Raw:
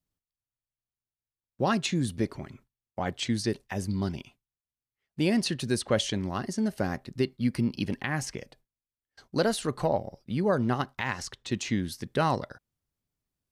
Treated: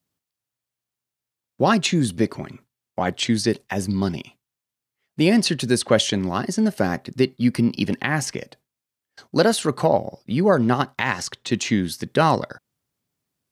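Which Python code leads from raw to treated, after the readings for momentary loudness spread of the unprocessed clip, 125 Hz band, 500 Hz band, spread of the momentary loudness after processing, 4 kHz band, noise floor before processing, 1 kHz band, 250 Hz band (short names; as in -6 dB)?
8 LU, +6.0 dB, +8.5 dB, 8 LU, +8.5 dB, under -85 dBFS, +8.5 dB, +8.0 dB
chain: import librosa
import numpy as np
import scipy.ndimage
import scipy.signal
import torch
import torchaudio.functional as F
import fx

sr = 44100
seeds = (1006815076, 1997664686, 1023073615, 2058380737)

y = scipy.signal.sosfilt(scipy.signal.butter(2, 120.0, 'highpass', fs=sr, output='sos'), x)
y = y * 10.0 ** (8.5 / 20.0)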